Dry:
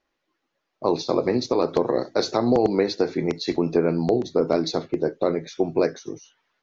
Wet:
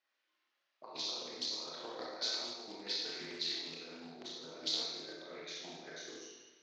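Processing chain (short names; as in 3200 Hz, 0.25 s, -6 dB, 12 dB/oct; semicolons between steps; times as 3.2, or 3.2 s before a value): negative-ratio compressor -26 dBFS, ratio -0.5; BPF 110–3100 Hz; differentiator; Schroeder reverb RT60 1.2 s, combs from 25 ms, DRR -4.5 dB; Doppler distortion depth 0.17 ms; gain -1.5 dB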